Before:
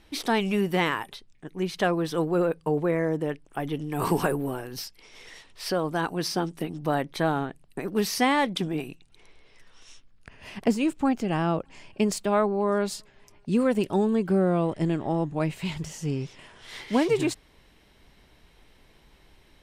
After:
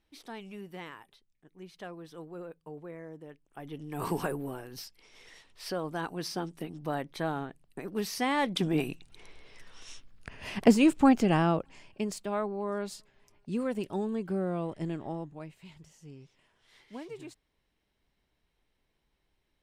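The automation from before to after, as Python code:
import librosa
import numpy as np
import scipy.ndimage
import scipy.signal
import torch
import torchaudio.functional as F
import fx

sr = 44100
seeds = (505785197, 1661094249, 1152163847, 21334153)

y = fx.gain(x, sr, db=fx.line((3.29, -19.0), (3.95, -7.5), (8.24, -7.5), (8.82, 3.0), (11.24, 3.0), (12.02, -9.0), (15.07, -9.0), (15.55, -20.0)))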